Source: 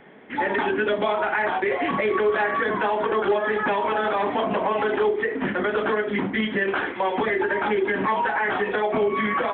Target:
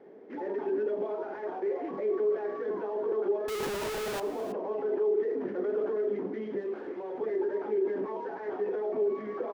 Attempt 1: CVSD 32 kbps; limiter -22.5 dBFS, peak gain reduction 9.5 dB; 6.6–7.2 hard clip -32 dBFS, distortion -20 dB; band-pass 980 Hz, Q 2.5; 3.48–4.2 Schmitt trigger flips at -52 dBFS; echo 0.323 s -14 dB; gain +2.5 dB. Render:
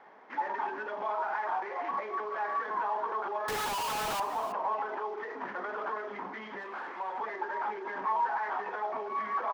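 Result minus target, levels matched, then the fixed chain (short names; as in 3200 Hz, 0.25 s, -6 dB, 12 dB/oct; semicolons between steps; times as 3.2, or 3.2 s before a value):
1000 Hz band +12.5 dB
CVSD 32 kbps; limiter -22.5 dBFS, peak gain reduction 9.5 dB; 6.6–7.2 hard clip -32 dBFS, distortion -20 dB; band-pass 410 Hz, Q 2.5; 3.48–4.2 Schmitt trigger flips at -52 dBFS; echo 0.323 s -14 dB; gain +2.5 dB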